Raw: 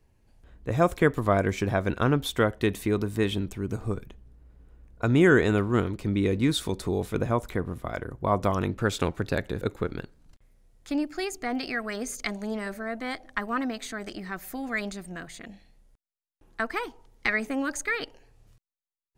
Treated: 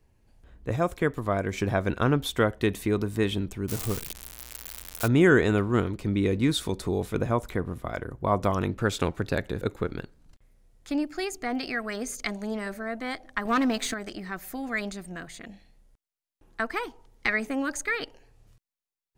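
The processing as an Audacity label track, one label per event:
0.760000	1.530000	gain -4 dB
3.680000	5.080000	zero-crossing glitches of -19.5 dBFS
13.450000	13.940000	waveshaping leveller passes 2

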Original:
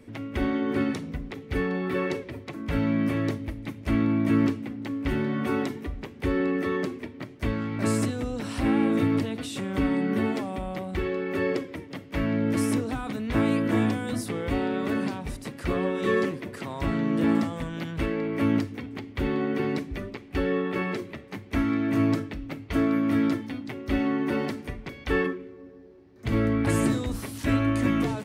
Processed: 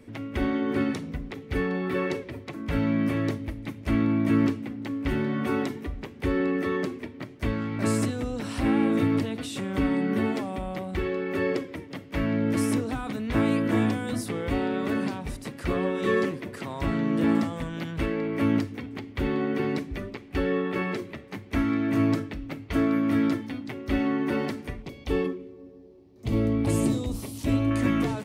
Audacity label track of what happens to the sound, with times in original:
24.820000	27.710000	peaking EQ 1.6 kHz -13.5 dB 0.88 oct

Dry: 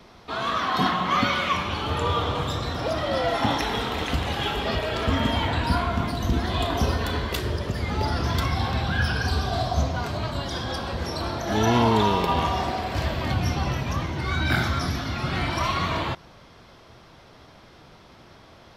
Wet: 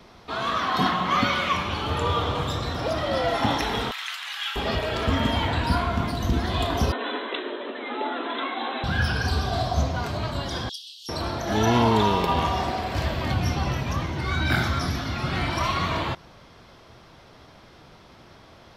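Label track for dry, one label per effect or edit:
3.910000	4.560000	high-pass 1.3 kHz 24 dB/octave
6.920000	8.840000	brick-wall FIR band-pass 230–4100 Hz
10.690000	11.090000	steep high-pass 2.9 kHz 96 dB/octave

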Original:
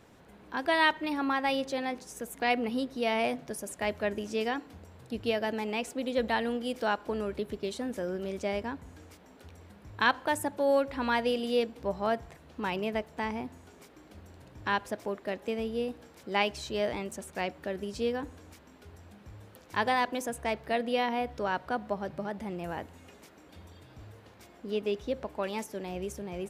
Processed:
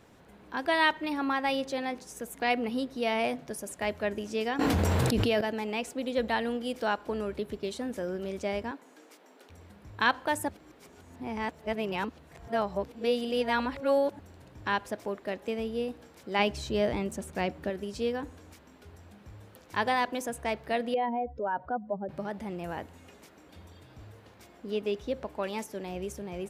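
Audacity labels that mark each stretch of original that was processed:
4.590000	5.410000	level flattener amount 100%
8.710000	9.500000	high-pass 280 Hz 24 dB/octave
10.490000	14.190000	reverse
16.390000	17.700000	bass shelf 350 Hz +8.5 dB
20.940000	22.090000	spectral contrast enhancement exponent 2

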